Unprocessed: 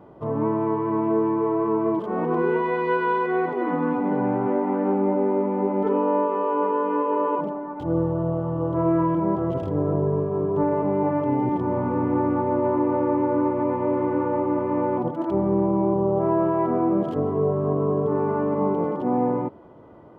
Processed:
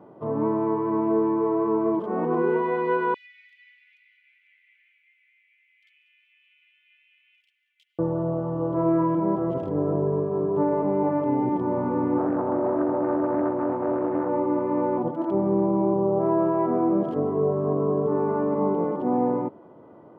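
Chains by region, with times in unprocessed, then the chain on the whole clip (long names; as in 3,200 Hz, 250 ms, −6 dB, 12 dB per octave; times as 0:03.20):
0:03.14–0:07.99: Butterworth high-pass 2,100 Hz 72 dB per octave + echo with shifted repeats 190 ms, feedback 64%, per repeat +89 Hz, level −17 dB
0:12.18–0:14.29: high-frequency loss of the air 460 metres + highs frequency-modulated by the lows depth 0.54 ms
whole clip: high-pass filter 150 Hz 12 dB per octave; high-shelf EQ 2,100 Hz −9 dB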